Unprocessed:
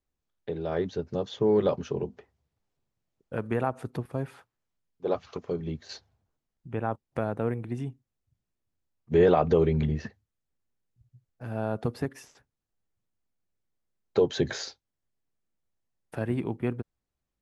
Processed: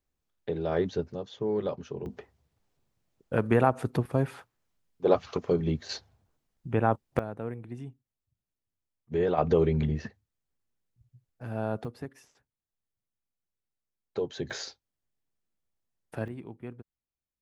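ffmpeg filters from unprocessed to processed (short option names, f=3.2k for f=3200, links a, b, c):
-af "asetnsamples=n=441:p=0,asendcmd='1.12 volume volume -6.5dB;2.06 volume volume 5.5dB;7.19 volume volume -7dB;9.38 volume volume -1dB;11.85 volume volume -8.5dB;14.5 volume volume -2dB;16.28 volume volume -12dB',volume=1.5dB"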